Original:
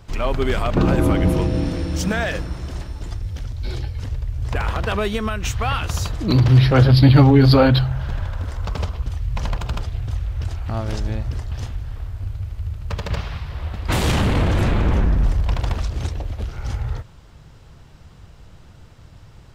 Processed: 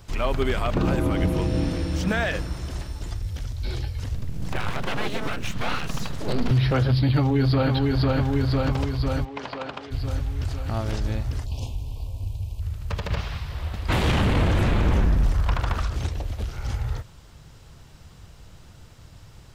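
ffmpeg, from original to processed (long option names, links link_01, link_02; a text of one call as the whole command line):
ffmpeg -i in.wav -filter_complex "[0:a]asettb=1/sr,asplit=3[link_01][link_02][link_03];[link_01]atrim=end=4.154[link_04];[link_02]atrim=start=4.15:end=6.51,asetpts=PTS-STARTPTS,afade=type=in:duration=0.004:curve=qsin,afade=type=out:start_time=2.356:duration=0.004:curve=qsin,aeval=exprs='abs(val(0))':channel_layout=same[link_05];[link_03]atrim=start=6.506[link_06];[link_04][link_05]acrossfade=duration=0.004:curve1=hsin:curve2=qsin[link_07];[link_07][link_06]acrossfade=duration=0.004:curve1=qsin:curve2=hsin,asplit=2[link_08][link_09];[link_09]afade=type=in:start_time=7.02:duration=0.01,afade=type=out:start_time=7.72:duration=0.01,aecho=0:1:500|1000|1500|2000|2500|3000|3500|4000|4500:0.595662|0.357397|0.214438|0.128663|0.0771978|0.0463187|0.0277912|0.0166747|0.0100048[link_10];[link_08][link_10]amix=inputs=2:normalize=0,asplit=3[link_11][link_12][link_13];[link_11]afade=type=out:start_time=9.24:duration=0.02[link_14];[link_12]highpass=340,lowpass=3200,afade=type=in:start_time=9.24:duration=0.02,afade=type=out:start_time=9.9:duration=0.02[link_15];[link_13]afade=type=in:start_time=9.9:duration=0.02[link_16];[link_14][link_15][link_16]amix=inputs=3:normalize=0,asplit=3[link_17][link_18][link_19];[link_17]afade=type=out:start_time=11.44:duration=0.02[link_20];[link_18]asuperstop=centerf=1600:order=12:qfactor=1.2,afade=type=in:start_time=11.44:duration=0.02,afade=type=out:start_time=12.6:duration=0.02[link_21];[link_19]afade=type=in:start_time=12.6:duration=0.02[link_22];[link_20][link_21][link_22]amix=inputs=3:normalize=0,asettb=1/sr,asplit=3[link_23][link_24][link_25];[link_23]atrim=end=15.344[link_26];[link_24]atrim=start=15.34:end=15.96,asetpts=PTS-STARTPTS,afade=type=in:duration=0.004:curve=qsin,afade=type=out:start_time=0.616:duration=0.004:curve=qsin,equalizer=frequency=1300:width=1.7:gain=9.5[link_27];[link_25]atrim=start=15.956[link_28];[link_26][link_27]acrossfade=duration=0.004:curve1=hsin:curve2=qsin[link_29];[link_29][link_28]acrossfade=duration=0.004:curve1=qsin:curve2=hsin,alimiter=limit=-10.5dB:level=0:latency=1:release=196,highshelf=frequency=4100:gain=8.5,acrossover=split=3600[link_30][link_31];[link_31]acompressor=threshold=-41dB:ratio=4:attack=1:release=60[link_32];[link_30][link_32]amix=inputs=2:normalize=0,volume=-2.5dB" out.wav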